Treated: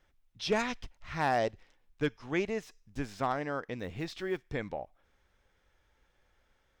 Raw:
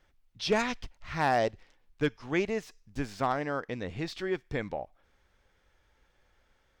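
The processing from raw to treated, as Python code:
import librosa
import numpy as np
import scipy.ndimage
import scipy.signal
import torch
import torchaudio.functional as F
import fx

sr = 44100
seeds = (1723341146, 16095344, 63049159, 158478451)

y = fx.block_float(x, sr, bits=7, at=(3.79, 4.48))
y = fx.notch(y, sr, hz=4500.0, q=23.0)
y = y * 10.0 ** (-2.5 / 20.0)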